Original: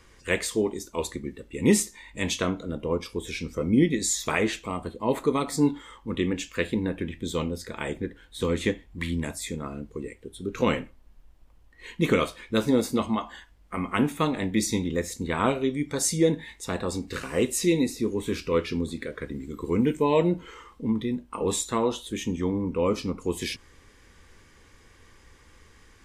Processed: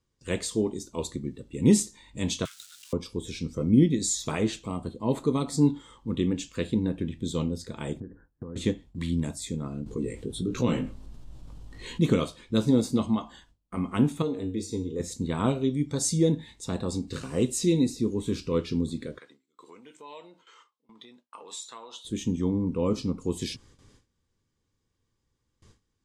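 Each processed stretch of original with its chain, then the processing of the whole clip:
2.45–2.93 s: zero-crossing glitches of -31.5 dBFS + steep high-pass 1.5 kHz 48 dB/octave + waveshaping leveller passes 1
8.00–8.56 s: steep low-pass 1.8 kHz 96 dB/octave + compression 8:1, threshold -35 dBFS
9.86–12.00 s: chorus 1.4 Hz, delay 16 ms, depth 3.8 ms + level flattener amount 50%
14.22–15.00 s: peaking EQ 410 Hz +14.5 dB 0.65 oct + feedback comb 93 Hz, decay 0.34 s, harmonics odd, mix 80%
19.18–22.05 s: compression 4:1, threshold -27 dBFS + high-pass 1 kHz + peaking EQ 12 kHz -10 dB 1.3 oct
whole clip: graphic EQ 125/250/2000/4000/8000 Hz +10/+4/-8/+5/+8 dB; gate with hold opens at -39 dBFS; treble shelf 7.2 kHz -10 dB; trim -4.5 dB

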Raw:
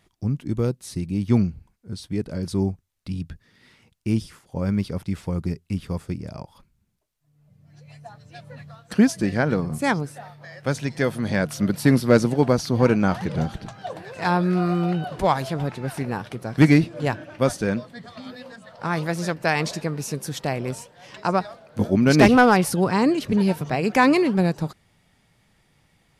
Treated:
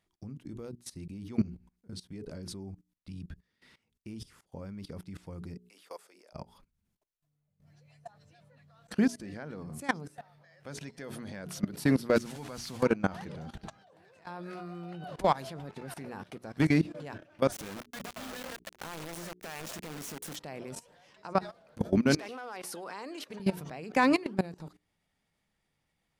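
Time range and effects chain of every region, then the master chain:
5.61–6.33 s: high-pass 480 Hz 24 dB/octave + treble shelf 8.4 kHz +6.5 dB
12.16–12.83 s: one-bit delta coder 64 kbps, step -31 dBFS + peaking EQ 370 Hz -10 dB 2 oct + waveshaping leveller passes 1
13.76–14.27 s: high-pass 46 Hz + compression 5:1, threshold -38 dBFS
17.52–20.36 s: peaking EQ 4.5 kHz -14.5 dB 0.3 oct + compression 8:1, threshold -36 dBFS + companded quantiser 2-bit
22.16–23.40 s: high-pass 500 Hz + compression 2:1, threshold -31 dBFS
whole clip: peaking EQ 120 Hz -8 dB 0.33 oct; hum notches 60/120/180/240/300/360/420 Hz; level held to a coarse grid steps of 19 dB; trim -3.5 dB

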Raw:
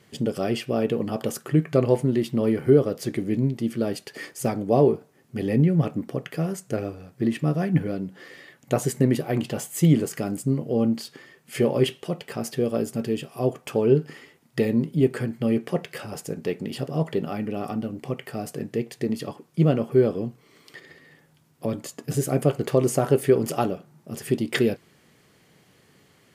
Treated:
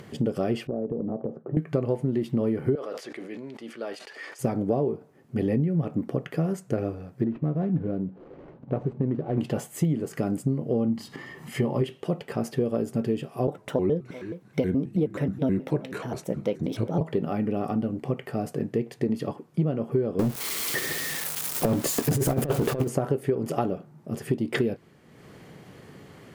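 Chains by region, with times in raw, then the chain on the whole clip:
0.67–1.57 s: Chebyshev band-pass 140–610 Hz + compression, threshold -28 dBFS
2.75–4.39 s: Bessel high-pass 1 kHz + distance through air 51 m + decay stretcher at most 51 dB/s
7.24–9.38 s: median filter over 25 samples + compression 1.5:1, threshold -29 dBFS + tape spacing loss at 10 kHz 25 dB
10.88–11.82 s: hum notches 50/100/150/200/250/300/350 Hz + comb 1 ms, depth 46% + upward compressor, threshold -31 dBFS
13.47–17.01 s: delay 380 ms -21.5 dB + vibrato with a chosen wave square 4.7 Hz, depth 250 cents
20.19–22.88 s: zero-crossing glitches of -24 dBFS + compressor with a negative ratio -26 dBFS, ratio -0.5 + waveshaping leveller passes 3
whole clip: upward compressor, threshold -39 dBFS; treble shelf 2 kHz -11.5 dB; compression 12:1, threshold -24 dBFS; trim +3.5 dB

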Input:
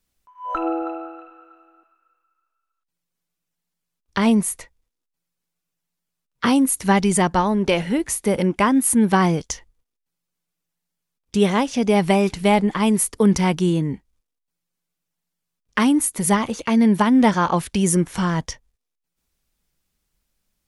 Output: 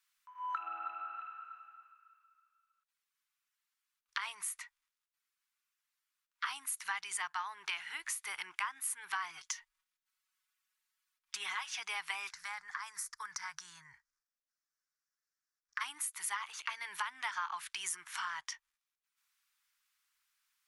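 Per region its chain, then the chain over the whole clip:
9.30–11.80 s: comb 5.4 ms, depth 84% + compression, threshold -14 dBFS
12.30–15.81 s: FFT filter 160 Hz 0 dB, 270 Hz -21 dB, 1.7 kHz -2 dB, 2.9 kHz -20 dB, 5.5 kHz +1 dB, 9.3 kHz -10 dB + compression 2:1, threshold -27 dBFS
whole clip: inverse Chebyshev high-pass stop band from 580 Hz, stop band 40 dB; treble shelf 2.7 kHz -9 dB; compression 3:1, threshold -44 dBFS; trim +4.5 dB

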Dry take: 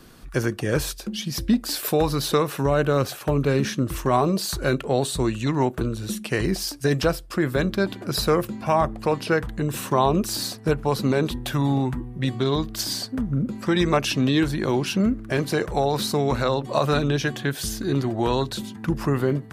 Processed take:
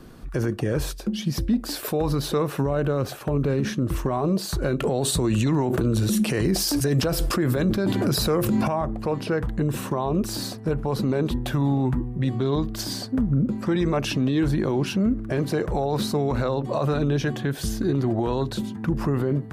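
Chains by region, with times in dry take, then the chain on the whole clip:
4.80–8.68 s: high-pass 60 Hz + treble shelf 4.1 kHz +7 dB + level flattener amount 70%
whole clip: tilt shelf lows +5 dB, about 1.3 kHz; peak limiter -14.5 dBFS

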